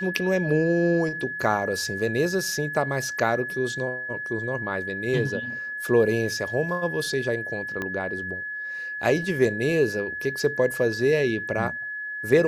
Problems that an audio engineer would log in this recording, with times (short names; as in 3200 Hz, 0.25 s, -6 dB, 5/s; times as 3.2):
tone 1700 Hz -30 dBFS
7.82 pop -16 dBFS